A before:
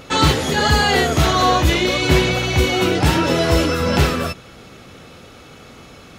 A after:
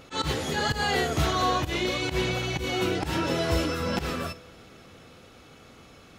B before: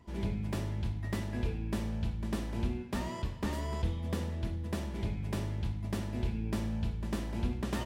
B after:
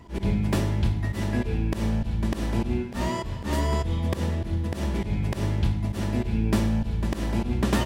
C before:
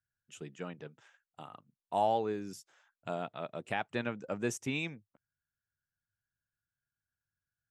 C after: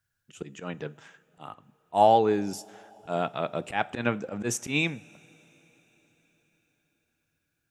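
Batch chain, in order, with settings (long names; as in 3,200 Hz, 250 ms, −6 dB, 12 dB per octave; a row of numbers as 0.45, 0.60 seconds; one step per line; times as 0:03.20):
volume swells 103 ms
coupled-rooms reverb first 0.34 s, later 4.8 s, from −19 dB, DRR 15 dB
loudness normalisation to −27 LKFS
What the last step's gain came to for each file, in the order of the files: −9.5, +11.5, +10.5 decibels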